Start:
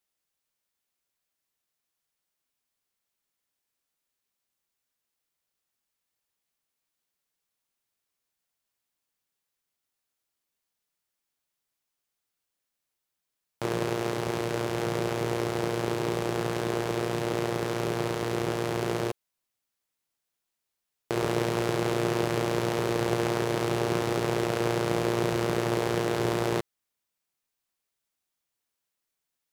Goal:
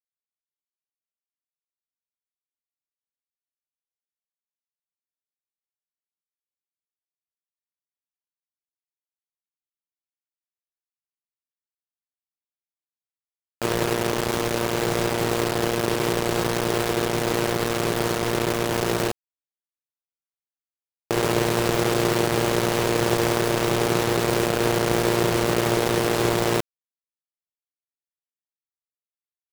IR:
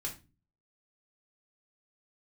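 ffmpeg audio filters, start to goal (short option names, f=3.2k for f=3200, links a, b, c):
-af "acrusher=bits=4:mix=0:aa=0.000001,volume=5dB"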